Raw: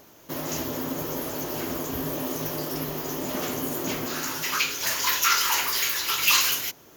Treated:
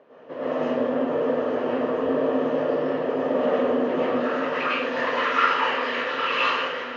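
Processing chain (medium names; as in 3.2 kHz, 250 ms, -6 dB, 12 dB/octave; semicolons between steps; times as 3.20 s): cabinet simulation 310–2300 Hz, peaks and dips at 330 Hz -5 dB, 520 Hz +8 dB, 850 Hz -6 dB, 1.4 kHz -6 dB, 2.2 kHz -8 dB; on a send: echo that smears into a reverb 940 ms, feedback 56%, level -9 dB; on the sum: plate-style reverb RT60 0.6 s, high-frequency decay 0.8×, pre-delay 90 ms, DRR -8.5 dB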